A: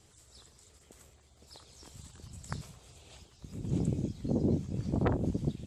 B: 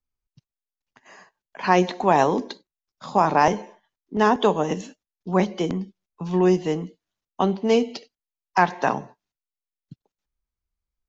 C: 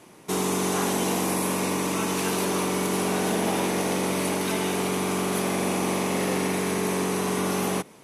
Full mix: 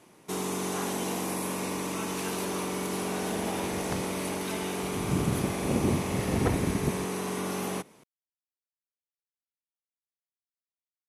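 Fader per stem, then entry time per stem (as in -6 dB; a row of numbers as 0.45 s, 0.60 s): +2.0 dB, mute, -6.5 dB; 1.40 s, mute, 0.00 s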